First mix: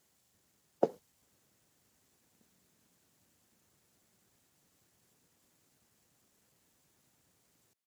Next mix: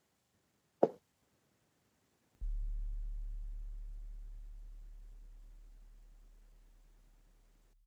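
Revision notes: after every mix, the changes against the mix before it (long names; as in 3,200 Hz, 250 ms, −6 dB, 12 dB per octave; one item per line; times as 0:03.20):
speech: add high-shelf EQ 4,500 Hz −11.5 dB
background: remove linear-phase brick-wall high-pass 170 Hz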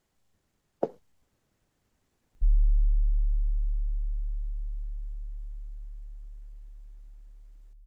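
master: remove high-pass filter 100 Hz 12 dB per octave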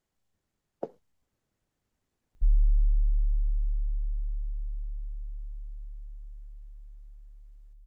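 speech −7.0 dB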